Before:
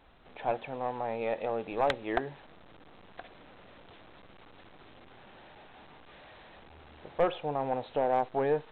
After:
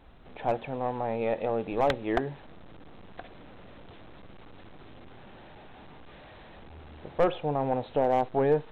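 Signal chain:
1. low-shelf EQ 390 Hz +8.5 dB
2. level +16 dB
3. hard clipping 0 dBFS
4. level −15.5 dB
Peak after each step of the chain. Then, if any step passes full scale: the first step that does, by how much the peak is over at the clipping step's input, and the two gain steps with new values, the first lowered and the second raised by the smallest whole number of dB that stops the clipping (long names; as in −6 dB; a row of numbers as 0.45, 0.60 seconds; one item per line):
−11.0, +5.0, 0.0, −15.5 dBFS
step 2, 5.0 dB
step 2 +11 dB, step 4 −10.5 dB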